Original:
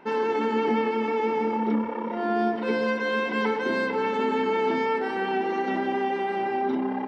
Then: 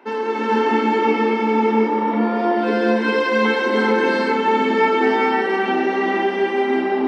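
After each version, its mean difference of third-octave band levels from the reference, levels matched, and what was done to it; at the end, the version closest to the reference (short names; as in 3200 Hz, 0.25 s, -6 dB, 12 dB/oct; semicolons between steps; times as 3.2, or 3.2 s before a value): 4.5 dB: Chebyshev high-pass 210 Hz, order 5; non-linear reverb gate 0.48 s rising, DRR -5 dB; gain +2.5 dB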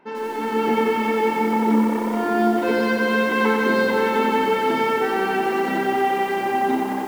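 6.0 dB: AGC gain up to 9 dB; lo-fi delay 91 ms, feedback 80%, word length 6-bit, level -6 dB; gain -4.5 dB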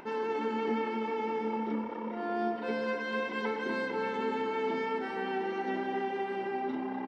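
1.5 dB: upward compressor, threshold -34 dBFS; on a send: feedback echo 0.246 s, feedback 56%, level -9 dB; on the sum: gain -8 dB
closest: third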